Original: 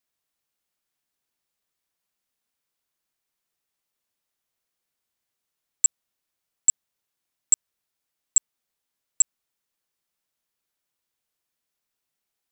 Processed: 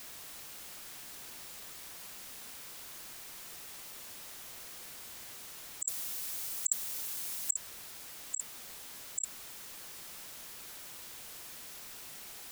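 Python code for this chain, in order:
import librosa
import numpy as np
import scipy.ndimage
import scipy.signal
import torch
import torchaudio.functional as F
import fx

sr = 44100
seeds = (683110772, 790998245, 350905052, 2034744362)

y = fx.spec_gate(x, sr, threshold_db=-20, keep='strong')
y = fx.high_shelf(y, sr, hz=4600.0, db=10.5, at=(5.85, 7.53))
y = fx.over_compress(y, sr, threshold_db=-46.0, ratio=-1.0)
y = y * librosa.db_to_amplitude(11.0)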